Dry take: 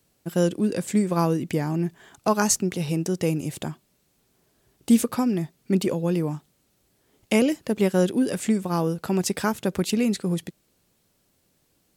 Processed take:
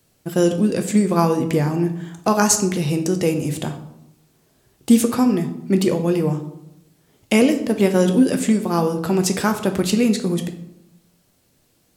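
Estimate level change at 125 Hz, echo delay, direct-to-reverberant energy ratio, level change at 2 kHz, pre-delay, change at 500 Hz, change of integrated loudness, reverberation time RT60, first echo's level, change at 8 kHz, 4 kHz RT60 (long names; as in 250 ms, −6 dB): +4.5 dB, no echo audible, 6.0 dB, +5.0 dB, 8 ms, +5.5 dB, +5.5 dB, 0.85 s, no echo audible, +5.5 dB, 0.50 s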